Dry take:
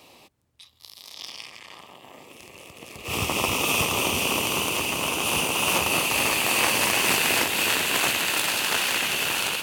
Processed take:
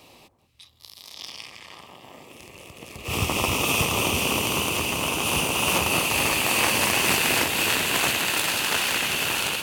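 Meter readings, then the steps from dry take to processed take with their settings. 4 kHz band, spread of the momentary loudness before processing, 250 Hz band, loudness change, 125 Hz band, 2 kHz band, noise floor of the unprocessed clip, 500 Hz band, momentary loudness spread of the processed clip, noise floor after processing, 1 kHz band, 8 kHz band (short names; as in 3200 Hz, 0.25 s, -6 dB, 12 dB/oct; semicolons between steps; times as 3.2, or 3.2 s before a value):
0.0 dB, 17 LU, +2.0 dB, +0.5 dB, +4.5 dB, 0.0 dB, -54 dBFS, +1.0 dB, 17 LU, -54 dBFS, +0.5 dB, 0.0 dB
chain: low shelf 140 Hz +7.5 dB; echo with dull and thin repeats by turns 0.193 s, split 1400 Hz, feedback 61%, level -13.5 dB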